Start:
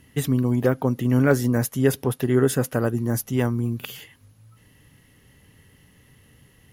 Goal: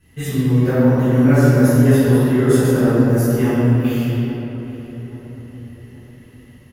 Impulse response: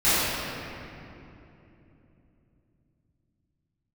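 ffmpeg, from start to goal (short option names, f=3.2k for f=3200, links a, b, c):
-filter_complex "[0:a]asplit=2[a][b];[b]adelay=829,lowpass=f=2.4k:p=1,volume=-15.5dB,asplit=2[c][d];[d]adelay=829,lowpass=f=2.4k:p=1,volume=0.43,asplit=2[e][f];[f]adelay=829,lowpass=f=2.4k:p=1,volume=0.43,asplit=2[g][h];[h]adelay=829,lowpass=f=2.4k:p=1,volume=0.43[i];[a][c][e][g][i]amix=inputs=5:normalize=0[j];[1:a]atrim=start_sample=2205[k];[j][k]afir=irnorm=-1:irlink=0,volume=-14dB"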